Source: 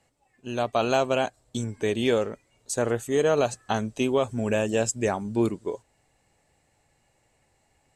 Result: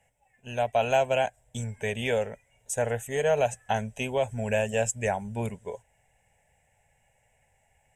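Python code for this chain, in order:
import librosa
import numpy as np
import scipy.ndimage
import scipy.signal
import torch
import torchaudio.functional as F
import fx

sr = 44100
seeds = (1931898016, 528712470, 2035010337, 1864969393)

y = fx.peak_eq(x, sr, hz=260.0, db=-2.5, octaves=2.9)
y = fx.fixed_phaser(y, sr, hz=1200.0, stages=6)
y = y * 10.0 ** (2.5 / 20.0)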